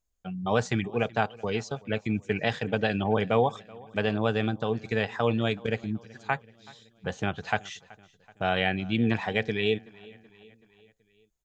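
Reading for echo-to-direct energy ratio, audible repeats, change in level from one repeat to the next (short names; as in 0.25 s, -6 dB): -21.5 dB, 3, -5.0 dB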